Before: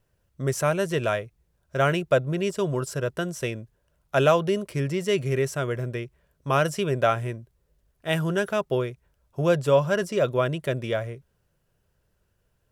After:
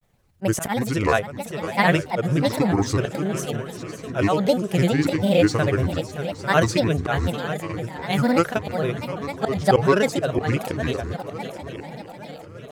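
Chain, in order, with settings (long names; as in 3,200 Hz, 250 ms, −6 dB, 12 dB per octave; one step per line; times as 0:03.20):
volume swells 149 ms
echo machine with several playback heads 291 ms, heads second and third, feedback 57%, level −13 dB
granular cloud, spray 39 ms, pitch spread up and down by 7 semitones
level +7.5 dB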